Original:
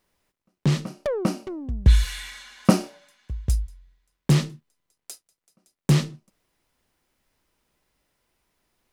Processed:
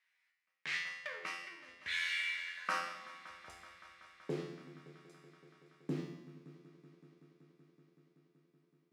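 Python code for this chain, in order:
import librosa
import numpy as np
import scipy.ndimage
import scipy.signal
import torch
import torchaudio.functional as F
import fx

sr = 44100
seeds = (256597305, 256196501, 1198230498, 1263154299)

p1 = fx.low_shelf(x, sr, hz=69.0, db=-8.5)
p2 = fx.room_shoebox(p1, sr, seeds[0], volume_m3=560.0, walls='mixed', distance_m=0.5)
p3 = fx.filter_sweep_bandpass(p2, sr, from_hz=2000.0, to_hz=300.0, start_s=2.42, end_s=4.65, q=3.5)
p4 = fx.tilt_shelf(p3, sr, db=-7.5, hz=970.0)
p5 = p4 + fx.echo_heads(p4, sr, ms=189, heads='all three', feedback_pct=74, wet_db=-23.5, dry=0)
p6 = fx.quant_float(p5, sr, bits=6)
p7 = fx.comb_fb(p6, sr, f0_hz=86.0, decay_s=0.78, harmonics='all', damping=0.0, mix_pct=90)
p8 = fx.over_compress(p7, sr, threshold_db=-46.0, ratio=-1.0)
p9 = p7 + F.gain(torch.from_numpy(p8), -0.5).numpy()
y = F.gain(torch.from_numpy(p9), 6.0).numpy()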